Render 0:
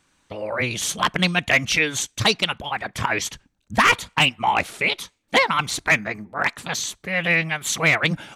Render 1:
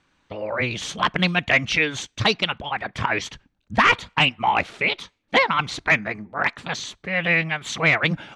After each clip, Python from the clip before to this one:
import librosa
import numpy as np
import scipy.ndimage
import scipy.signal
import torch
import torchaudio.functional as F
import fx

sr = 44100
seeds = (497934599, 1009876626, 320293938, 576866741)

y = scipy.signal.sosfilt(scipy.signal.butter(2, 4100.0, 'lowpass', fs=sr, output='sos'), x)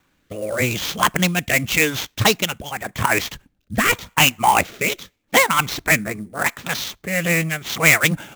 y = fx.rotary(x, sr, hz=0.85)
y = fx.sample_hold(y, sr, seeds[0], rate_hz=9700.0, jitter_pct=20)
y = y * librosa.db_to_amplitude(5.5)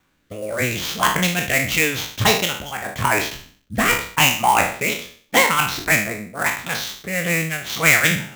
y = fx.spec_trails(x, sr, decay_s=0.49)
y = y * librosa.db_to_amplitude(-2.5)